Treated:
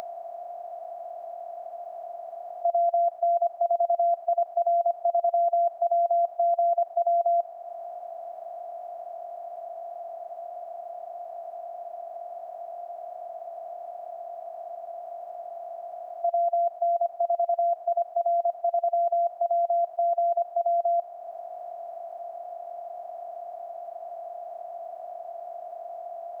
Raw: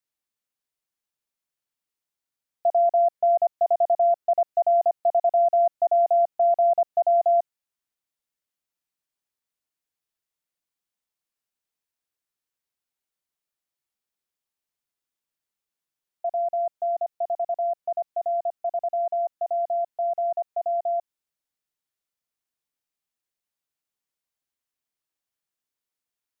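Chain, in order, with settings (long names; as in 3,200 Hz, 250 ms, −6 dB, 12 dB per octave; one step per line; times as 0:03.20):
compressor on every frequency bin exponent 0.2
high-pass filter 690 Hz 6 dB per octave
upward compression, threshold −31 dBFS
level −1 dB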